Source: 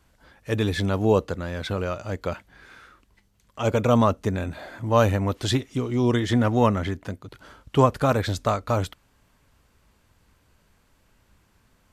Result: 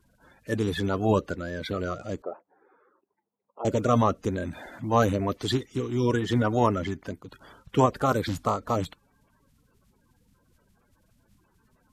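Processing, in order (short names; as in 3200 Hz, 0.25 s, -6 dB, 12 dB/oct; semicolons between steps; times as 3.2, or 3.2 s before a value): bin magnitudes rounded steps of 30 dB; 2.22–3.65 Chebyshev band-pass 390–910 Hz, order 2; gain -2.5 dB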